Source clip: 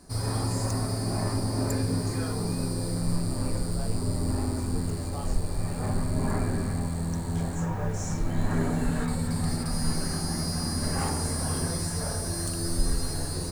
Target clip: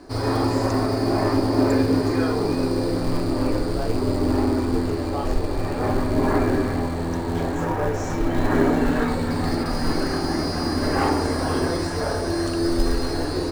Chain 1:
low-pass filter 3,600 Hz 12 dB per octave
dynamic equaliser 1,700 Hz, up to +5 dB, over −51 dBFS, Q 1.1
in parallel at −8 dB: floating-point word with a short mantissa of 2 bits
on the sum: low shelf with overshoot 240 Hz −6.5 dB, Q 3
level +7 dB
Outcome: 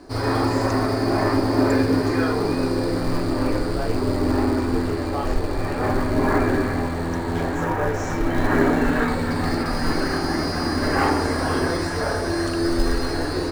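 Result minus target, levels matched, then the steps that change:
2,000 Hz band +4.0 dB
remove: dynamic equaliser 1,700 Hz, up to +5 dB, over −51 dBFS, Q 1.1

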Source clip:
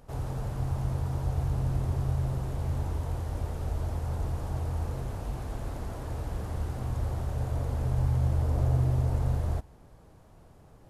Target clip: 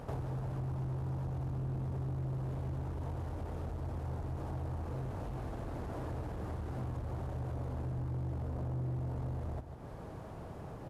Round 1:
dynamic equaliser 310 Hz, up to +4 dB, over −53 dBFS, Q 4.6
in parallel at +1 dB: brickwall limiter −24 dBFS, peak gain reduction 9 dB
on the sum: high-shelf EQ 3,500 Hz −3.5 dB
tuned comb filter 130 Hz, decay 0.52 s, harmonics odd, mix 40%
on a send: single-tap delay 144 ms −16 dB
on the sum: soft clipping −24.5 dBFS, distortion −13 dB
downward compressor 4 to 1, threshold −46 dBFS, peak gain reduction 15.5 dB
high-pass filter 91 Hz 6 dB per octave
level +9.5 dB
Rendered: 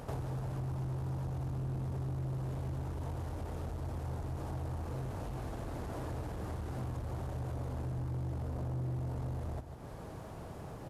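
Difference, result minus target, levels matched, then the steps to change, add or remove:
4,000 Hz band +4.0 dB
change: high-shelf EQ 3,500 Hz −11.5 dB

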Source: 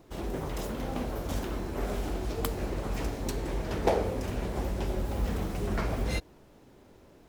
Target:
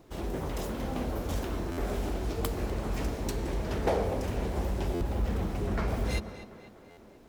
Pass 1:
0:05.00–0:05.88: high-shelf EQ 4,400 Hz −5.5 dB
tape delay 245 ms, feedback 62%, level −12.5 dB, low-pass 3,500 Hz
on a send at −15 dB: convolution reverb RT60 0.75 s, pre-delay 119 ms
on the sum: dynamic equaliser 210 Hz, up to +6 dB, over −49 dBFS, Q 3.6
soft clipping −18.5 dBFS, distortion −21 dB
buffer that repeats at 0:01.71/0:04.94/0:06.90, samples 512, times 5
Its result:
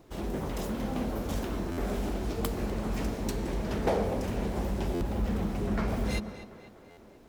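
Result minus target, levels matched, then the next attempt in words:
250 Hz band +2.5 dB
0:05.00–0:05.88: high-shelf EQ 4,400 Hz −5.5 dB
tape delay 245 ms, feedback 62%, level −12.5 dB, low-pass 3,500 Hz
on a send at −15 dB: convolution reverb RT60 0.75 s, pre-delay 119 ms
on the sum: dynamic equaliser 73 Hz, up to +6 dB, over −49 dBFS, Q 3.6
soft clipping −18.5 dBFS, distortion −21 dB
buffer that repeats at 0:01.71/0:04.94/0:06.90, samples 512, times 5

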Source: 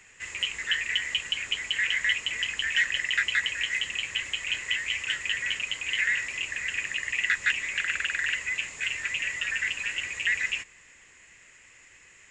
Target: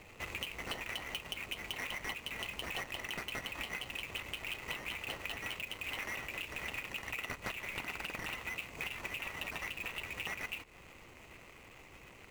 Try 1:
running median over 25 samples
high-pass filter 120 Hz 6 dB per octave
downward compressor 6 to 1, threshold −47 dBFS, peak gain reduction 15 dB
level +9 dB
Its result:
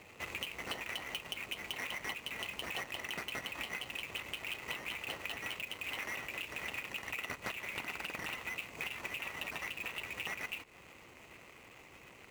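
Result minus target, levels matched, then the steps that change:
125 Hz band −3.5 dB
remove: high-pass filter 120 Hz 6 dB per octave

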